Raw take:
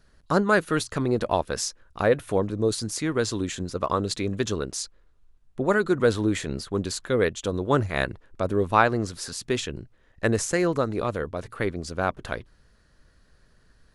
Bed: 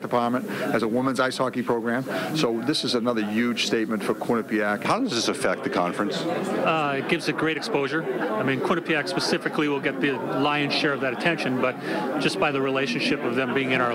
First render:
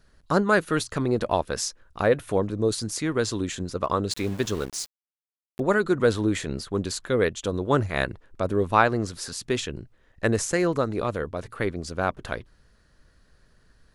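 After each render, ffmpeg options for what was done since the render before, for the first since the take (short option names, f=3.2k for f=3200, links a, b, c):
-filter_complex "[0:a]asettb=1/sr,asplit=3[a][b][c];[a]atrim=end=4.114[d];[b]atrim=start=4.11:end=5.6,asetpts=PTS-STARTPTS,afade=t=in:d=0.004:c=qsin,afade=t=out:st=1.486:d=0.004:c=qsin,aeval=exprs='val(0)*gte(abs(val(0)),0.0158)':c=same[e];[c]atrim=start=5.596[f];[d][e]acrossfade=d=0.004:c1=hsin:c2=qsin[g];[g][f]acrossfade=d=0.004:c1=qsin:c2=hsin"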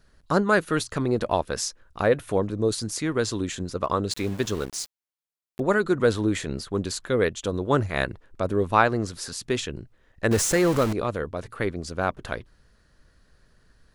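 -filter_complex "[0:a]asettb=1/sr,asplit=3[a][b][c];[a]atrim=end=10.314[d];[b]atrim=start=10.31:end=10.93,asetpts=PTS-STARTPTS,afade=t=in:d=0.004:c=qsin,afade=t=out:st=0.616:d=0.004:c=qsin,aeval=exprs='val(0)+0.5*0.0631*sgn(val(0))':c=same[e];[c]atrim=start=10.926[f];[d][e]acrossfade=d=0.004:c1=hsin:c2=qsin[g];[g][f]acrossfade=d=0.004:c1=qsin:c2=hsin"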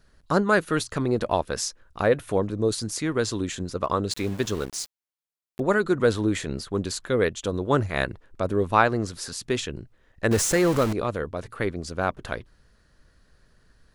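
-af anull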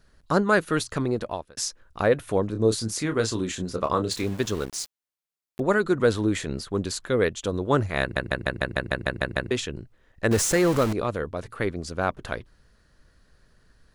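-filter_complex "[0:a]asettb=1/sr,asplit=3[a][b][c];[a]atrim=end=2.524[d];[b]atrim=start=2.52:end=4.24,asetpts=PTS-STARTPTS,afade=t=in:d=0.004:c=qsin,afade=t=out:st=1.716:d=0.004:c=qsin,asplit=2[e][f];[f]adelay=27,volume=-7dB[g];[e][g]amix=inputs=2:normalize=0,atrim=end_sample=75852[h];[c]atrim=start=4.236[i];[d][h]acrossfade=d=0.004:c1=hsin:c2=qsin[j];[j][i]acrossfade=d=0.004:c1=qsin:c2=hsin,asplit=12[k][l][m][n][o][p][q][r][s][t][u][v];[k]atrim=end=1.57,asetpts=PTS-STARTPTS,afade=t=out:st=1:d=0.57[w];[l]atrim=start=1.57:end=8.162,asetpts=PTS-STARTPTS,afade=t=in:d=0.004:c=hsin[x];[m]atrim=start=8.008:end=8.162[y];[n]atrim=start=8.008:end=8.162[z];[o]atrim=start=8.008:end=8.162[aa];[p]atrim=start=8.008:end=8.162[ab];[q]atrim=start=8.008:end=8.162[ac];[r]atrim=start=8.008:end=8.162[ad];[s]atrim=start=8.008:end=8.162[ae];[t]atrim=start=8.008:end=8.162[af];[u]atrim=start=8.008:end=8.162[ag];[v]atrim=start=9.508[ah];[w][x]concat=n=2:v=0:a=1[ai];[ai][y]acrossfade=d=0.004:c1=hsin:c2=hsin[aj];[aj][z]acrossfade=d=0.004:c1=hsin:c2=hsin[ak];[ak][aa]acrossfade=d=0.004:c1=hsin:c2=hsin[al];[al][ab]acrossfade=d=0.004:c1=hsin:c2=hsin[am];[am][ac]acrossfade=d=0.004:c1=hsin:c2=hsin[an];[an][ad]acrossfade=d=0.004:c1=hsin:c2=hsin[ao];[ao][ae]acrossfade=d=0.004:c1=hsin:c2=hsin[ap];[ap][af]acrossfade=d=0.004:c1=hsin:c2=hsin[aq];[aq][ag]acrossfade=d=0.004:c1=hsin:c2=hsin[ar];[ar][ah]acrossfade=d=0.004:c1=hsin:c2=hsin"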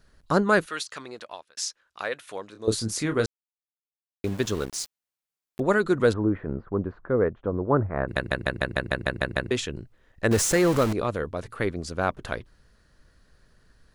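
-filter_complex "[0:a]asettb=1/sr,asplit=3[a][b][c];[a]atrim=end=0.664[d];[b]atrim=start=0.66:end=2.68,asetpts=PTS-STARTPTS,afade=t=in:d=0.004:c=qsin,afade=t=out:st=2.016:d=0.004:c=qsin,bandpass=f=3.7k:t=q:w=0.52[e];[c]atrim=start=2.676[f];[d][e]acrossfade=d=0.004:c1=hsin:c2=qsin[g];[g][f]acrossfade=d=0.004:c1=qsin:c2=hsin,asplit=3[h][i][j];[h]afade=t=out:st=6.12:d=0.02[k];[i]lowpass=f=1.4k:w=0.5412,lowpass=f=1.4k:w=1.3066,afade=t=in:st=6.12:d=0.02,afade=t=out:st=8.07:d=0.02[l];[j]afade=t=in:st=8.07:d=0.02[m];[k][l][m]amix=inputs=3:normalize=0,asplit=3[n][o][p];[n]atrim=end=3.26,asetpts=PTS-STARTPTS,afade=t=out:st=3.256:d=0.004:c=hsin[q];[o]atrim=start=3.26:end=4.24,asetpts=PTS-STARTPTS,volume=0[r];[p]atrim=start=4.24,asetpts=PTS-STARTPTS,afade=t=in:d=0.004:c=hsin[s];[q][r][s]concat=n=3:v=0:a=1"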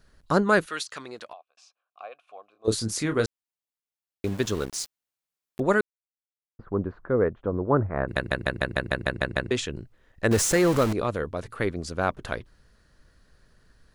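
-filter_complex "[0:a]asplit=3[a][b][c];[a]afade=t=out:st=1.32:d=0.02[d];[b]asplit=3[e][f][g];[e]bandpass=f=730:t=q:w=8,volume=0dB[h];[f]bandpass=f=1.09k:t=q:w=8,volume=-6dB[i];[g]bandpass=f=2.44k:t=q:w=8,volume=-9dB[j];[h][i][j]amix=inputs=3:normalize=0,afade=t=in:st=1.32:d=0.02,afade=t=out:st=2.64:d=0.02[k];[c]afade=t=in:st=2.64:d=0.02[l];[d][k][l]amix=inputs=3:normalize=0,asettb=1/sr,asplit=3[m][n][o];[m]atrim=end=9.134[p];[n]atrim=start=9.13:end=9.66,asetpts=PTS-STARTPTS,afade=t=in:d=0.004:c=qsin,afade=t=out:st=0.526:d=0.004:c=qsin,lowpass=f=10k:w=0.5412,lowpass=f=10k:w=1.3066[q];[o]atrim=start=9.656[r];[p][q]acrossfade=d=0.004:c1=hsin:c2=qsin[s];[s][r]acrossfade=d=0.004:c1=qsin:c2=hsin,asplit=3[t][u][v];[t]atrim=end=5.81,asetpts=PTS-STARTPTS,afade=t=out:st=5.806:d=0.004:c=hsin[w];[u]atrim=start=5.81:end=6.59,asetpts=PTS-STARTPTS,volume=0[x];[v]atrim=start=6.59,asetpts=PTS-STARTPTS,afade=t=in:d=0.004:c=hsin[y];[w][x][y]concat=n=3:v=0:a=1"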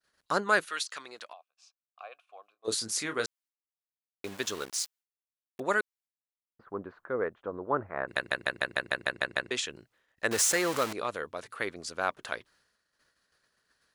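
-af "agate=range=-33dB:threshold=-52dB:ratio=3:detection=peak,highpass=f=1.1k:p=1"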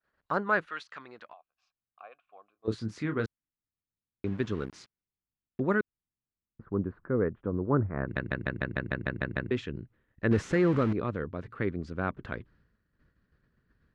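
-af "lowpass=1.8k,asubboost=boost=10:cutoff=220"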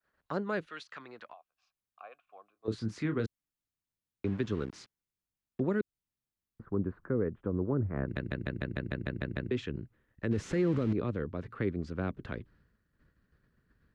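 -filter_complex "[0:a]acrossover=split=260|590|2400[a][b][c][d];[c]acompressor=threshold=-44dB:ratio=5[e];[a][b][e][d]amix=inputs=4:normalize=0,alimiter=limit=-20.5dB:level=0:latency=1:release=132"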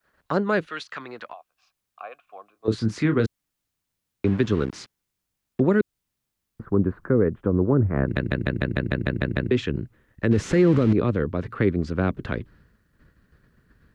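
-af "volume=11dB"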